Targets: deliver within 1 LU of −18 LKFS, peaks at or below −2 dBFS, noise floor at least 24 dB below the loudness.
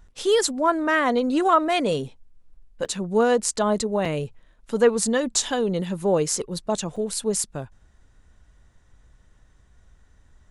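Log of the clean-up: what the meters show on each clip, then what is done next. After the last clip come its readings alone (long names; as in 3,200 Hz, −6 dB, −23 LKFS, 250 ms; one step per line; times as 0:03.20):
number of dropouts 3; longest dropout 4.6 ms; integrated loudness −23.0 LKFS; sample peak −4.5 dBFS; target loudness −18.0 LKFS
→ repair the gap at 0:02.85/0:04.05/0:06.96, 4.6 ms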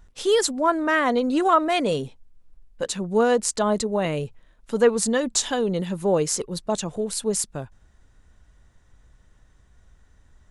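number of dropouts 0; integrated loudness −23.0 LKFS; sample peak −4.5 dBFS; target loudness −18.0 LKFS
→ level +5 dB
brickwall limiter −2 dBFS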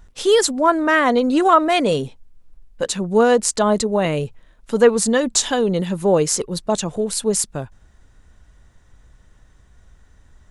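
integrated loudness −18.0 LKFS; sample peak −2.0 dBFS; background noise floor −53 dBFS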